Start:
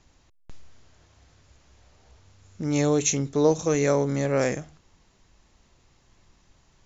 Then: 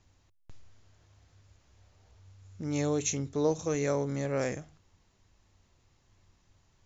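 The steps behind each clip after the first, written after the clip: bell 95 Hz +11 dB 0.31 oct; gain -7.5 dB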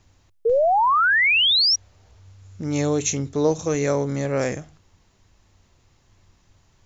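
painted sound rise, 0.45–1.76, 440–5800 Hz -25 dBFS; gain +7.5 dB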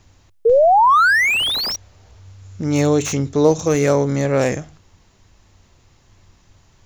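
slew limiter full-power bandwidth 190 Hz; gain +6 dB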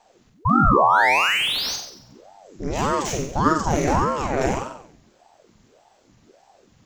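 flutter echo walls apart 7.9 m, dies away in 0.67 s; ring modulator with a swept carrier 460 Hz, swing 75%, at 1.7 Hz; gain -3 dB

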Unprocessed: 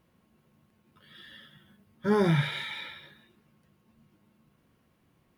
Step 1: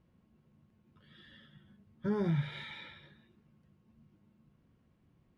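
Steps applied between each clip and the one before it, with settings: Bessel low-pass 5800 Hz, order 2; low shelf 310 Hz +11 dB; compressor 2:1, threshold -24 dBFS, peak gain reduction 6.5 dB; gain -8.5 dB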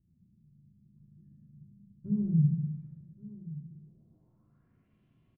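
low-pass sweep 180 Hz -> 3000 Hz, 3.37–4.99; echo 1.125 s -16.5 dB; shoebox room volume 1900 m³, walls furnished, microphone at 3.1 m; gain -6 dB

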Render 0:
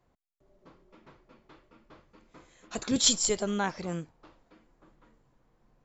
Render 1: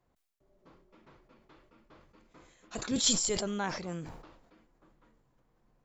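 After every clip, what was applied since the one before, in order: sustainer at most 54 dB/s; gain -4.5 dB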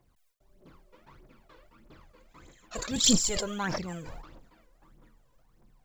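companded quantiser 8-bit; phaser 1.6 Hz, delay 2.1 ms, feedback 67%; gain +1 dB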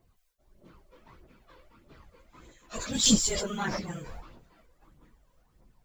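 phase scrambler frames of 50 ms

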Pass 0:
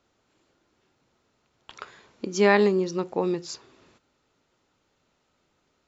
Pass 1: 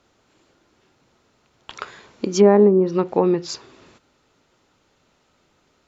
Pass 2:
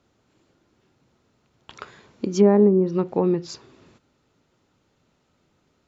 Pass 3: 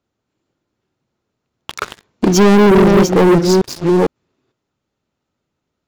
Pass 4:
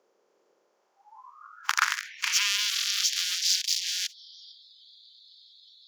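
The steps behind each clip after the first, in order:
treble ducked by the level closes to 640 Hz, closed at -17.5 dBFS; gain +8 dB
bell 130 Hz +8 dB 2.9 oct; gain -7 dB
reverse delay 0.452 s, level -6.5 dB; sample leveller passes 5
per-bin compression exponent 0.4; high-pass sweep 500 Hz -> 3600 Hz, 0.56–2.73; spectral noise reduction 30 dB; gain -9 dB

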